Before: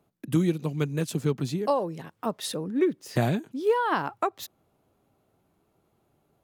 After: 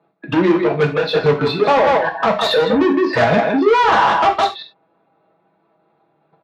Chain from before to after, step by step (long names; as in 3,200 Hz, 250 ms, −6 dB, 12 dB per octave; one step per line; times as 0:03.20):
noise reduction from a noise print of the clip's start 18 dB
far-end echo of a speakerphone 160 ms, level −9 dB
in parallel at +2 dB: downward compressor 12 to 1, threshold −35 dBFS, peak gain reduction 17.5 dB
on the sum: Butterworth low-pass 4,200 Hz 48 dB per octave
comb filter 6.1 ms, depth 52%
output level in coarse steps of 11 dB
notch filter 3,000 Hz, Q 6
mid-hump overdrive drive 29 dB, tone 1,200 Hz, clips at −10.5 dBFS
soft clipping −20.5 dBFS, distortion −14 dB
high-pass filter 98 Hz 6 dB per octave
reverb whose tail is shaped and stops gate 120 ms falling, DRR 2 dB
level +9 dB